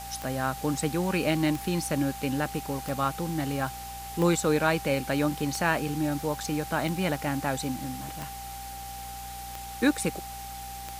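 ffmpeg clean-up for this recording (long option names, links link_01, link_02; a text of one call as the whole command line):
ffmpeg -i in.wav -af "adeclick=threshold=4,bandreject=frequency=60.5:width_type=h:width=4,bandreject=frequency=121:width_type=h:width=4,bandreject=frequency=181.5:width_type=h:width=4,bandreject=frequency=242:width_type=h:width=4,bandreject=frequency=790:width=30,afftdn=noise_reduction=30:noise_floor=-39" out.wav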